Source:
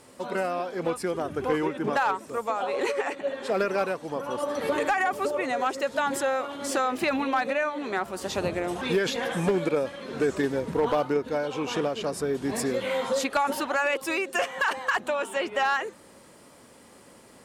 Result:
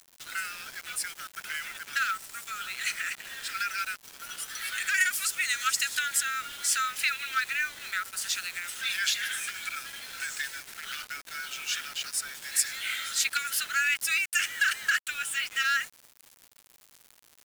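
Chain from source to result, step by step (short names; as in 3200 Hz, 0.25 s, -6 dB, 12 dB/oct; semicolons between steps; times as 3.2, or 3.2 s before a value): 4.94–5.99 high shelf 3200 Hz +9.5 dB; Chebyshev high-pass 1300 Hz, order 8; tilt +3 dB/oct; bit-crush 7-bit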